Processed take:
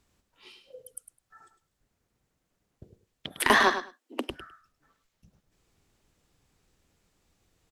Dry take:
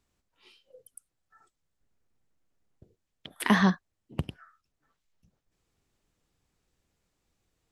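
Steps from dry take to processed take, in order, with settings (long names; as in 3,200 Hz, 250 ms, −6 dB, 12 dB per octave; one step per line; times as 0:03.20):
0:03.41–0:04.30: Butterworth high-pass 240 Hz 96 dB per octave
asymmetric clip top −22 dBFS
on a send: repeating echo 104 ms, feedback 15%, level −10 dB
on the sum: level +6.5 dB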